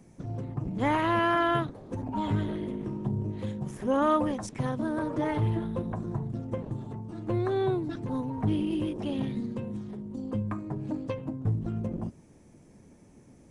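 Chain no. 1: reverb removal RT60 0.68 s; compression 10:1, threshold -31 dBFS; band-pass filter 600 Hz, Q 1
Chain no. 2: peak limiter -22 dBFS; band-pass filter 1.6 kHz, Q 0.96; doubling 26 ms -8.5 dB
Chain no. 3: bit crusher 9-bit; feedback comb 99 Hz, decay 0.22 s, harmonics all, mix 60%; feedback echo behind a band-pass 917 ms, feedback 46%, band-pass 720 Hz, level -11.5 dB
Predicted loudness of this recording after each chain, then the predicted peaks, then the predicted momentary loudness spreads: -42.5 LUFS, -41.5 LUFS, -35.0 LUFS; -24.5 dBFS, -21.5 dBFS, -17.0 dBFS; 9 LU, 16 LU, 12 LU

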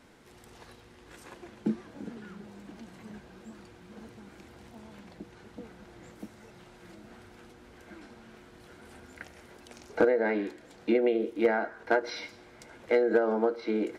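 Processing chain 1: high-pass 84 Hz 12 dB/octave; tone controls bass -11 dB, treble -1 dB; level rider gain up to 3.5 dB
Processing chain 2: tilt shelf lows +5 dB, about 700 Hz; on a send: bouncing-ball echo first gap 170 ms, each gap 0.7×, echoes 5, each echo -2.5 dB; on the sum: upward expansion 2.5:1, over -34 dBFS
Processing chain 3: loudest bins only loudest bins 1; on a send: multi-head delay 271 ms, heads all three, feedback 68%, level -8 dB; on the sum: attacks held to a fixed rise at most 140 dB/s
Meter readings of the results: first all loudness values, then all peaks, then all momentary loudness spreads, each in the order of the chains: -26.5 LUFS, -29.5 LUFS, -35.5 LUFS; -7.5 dBFS, -7.5 dBFS, -19.0 dBFS; 22 LU, 16 LU, 20 LU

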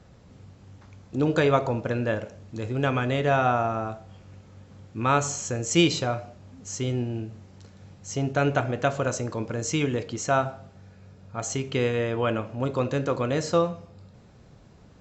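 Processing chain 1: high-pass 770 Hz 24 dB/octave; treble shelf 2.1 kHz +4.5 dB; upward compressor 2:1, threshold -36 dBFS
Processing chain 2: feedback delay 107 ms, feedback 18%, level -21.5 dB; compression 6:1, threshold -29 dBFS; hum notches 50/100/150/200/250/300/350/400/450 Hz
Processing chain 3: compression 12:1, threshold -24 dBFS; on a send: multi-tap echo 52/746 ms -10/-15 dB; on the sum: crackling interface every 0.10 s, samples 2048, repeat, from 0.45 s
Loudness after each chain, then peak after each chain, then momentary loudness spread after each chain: -29.0 LUFS, -34.0 LUFS, -30.0 LUFS; -9.5 dBFS, -18.5 dBFS, -15.0 dBFS; 23 LU, 20 LU, 16 LU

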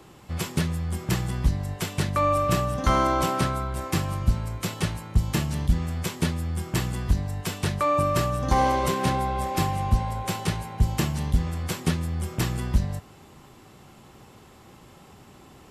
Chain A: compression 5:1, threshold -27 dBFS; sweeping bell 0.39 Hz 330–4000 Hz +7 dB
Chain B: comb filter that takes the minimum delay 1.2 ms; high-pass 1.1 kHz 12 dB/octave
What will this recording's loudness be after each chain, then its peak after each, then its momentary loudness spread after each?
-31.0 LUFS, -34.0 LUFS; -13.5 dBFS, -17.0 dBFS; 20 LU, 13 LU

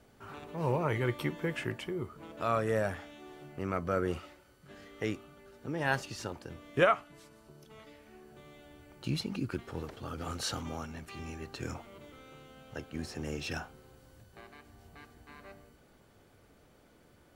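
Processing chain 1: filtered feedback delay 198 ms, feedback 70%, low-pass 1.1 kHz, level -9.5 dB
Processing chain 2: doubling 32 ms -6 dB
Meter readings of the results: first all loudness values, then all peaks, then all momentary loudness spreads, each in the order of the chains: -35.5 LUFS, -34.0 LUFS; -12.0 dBFS, -11.5 dBFS; 22 LU, 23 LU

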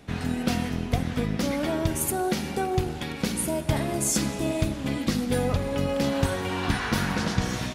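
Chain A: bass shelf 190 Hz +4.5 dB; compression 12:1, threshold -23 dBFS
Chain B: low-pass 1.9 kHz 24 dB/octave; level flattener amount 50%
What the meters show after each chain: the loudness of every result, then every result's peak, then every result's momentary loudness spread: -29.0 LUFS, -24.5 LUFS; -10.5 dBFS, -9.0 dBFS; 3 LU, 2 LU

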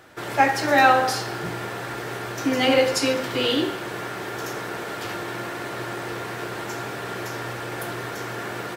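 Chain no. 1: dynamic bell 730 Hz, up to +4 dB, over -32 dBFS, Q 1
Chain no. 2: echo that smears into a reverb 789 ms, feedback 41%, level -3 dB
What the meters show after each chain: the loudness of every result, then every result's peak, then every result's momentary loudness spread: -22.5 LUFS, -22.5 LUFS; -2.0 dBFS, -4.5 dBFS; 15 LU, 11 LU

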